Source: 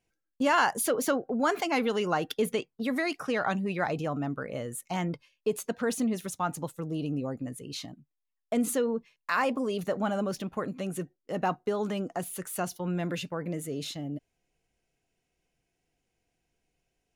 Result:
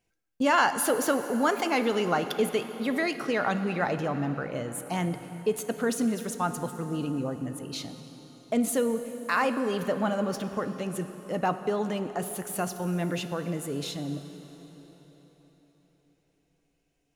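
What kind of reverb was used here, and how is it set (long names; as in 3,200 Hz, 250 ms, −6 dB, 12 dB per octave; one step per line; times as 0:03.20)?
dense smooth reverb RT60 4.5 s, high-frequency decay 0.8×, DRR 9 dB
level +1.5 dB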